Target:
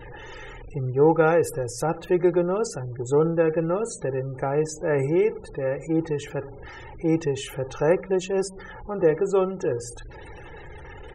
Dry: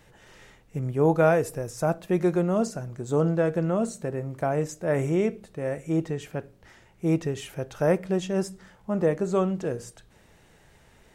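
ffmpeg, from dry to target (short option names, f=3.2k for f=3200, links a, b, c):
-af "aeval=exprs='val(0)+0.5*0.0133*sgn(val(0))':c=same,afftfilt=real='re*gte(hypot(re,im),0.00891)':imag='im*gte(hypot(re,im),0.00891)':win_size=1024:overlap=0.75,aecho=1:1:2.3:0.74"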